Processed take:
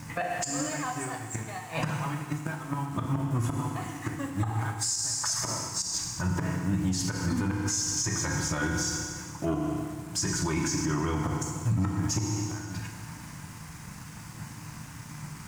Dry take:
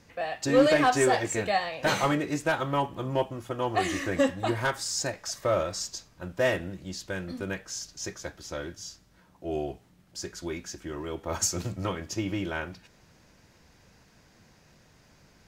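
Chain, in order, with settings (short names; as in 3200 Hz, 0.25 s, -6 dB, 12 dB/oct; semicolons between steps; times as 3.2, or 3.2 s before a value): bin magnitudes rounded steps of 15 dB; flipped gate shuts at -22 dBFS, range -26 dB; bell 220 Hz +12 dB 2 oct; sample leveller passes 1; requantised 10-bit, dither none; graphic EQ 125/250/500/1000/2000/4000/8000 Hz +8/-5/-11/+11/+4/-4/+10 dB; FDN reverb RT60 1.6 s, low-frequency decay 1×, high-frequency decay 1×, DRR 3 dB; compressor, threshold -27 dBFS, peak gain reduction 8.5 dB; limiter -24.5 dBFS, peak gain reduction 8.5 dB; gain +5 dB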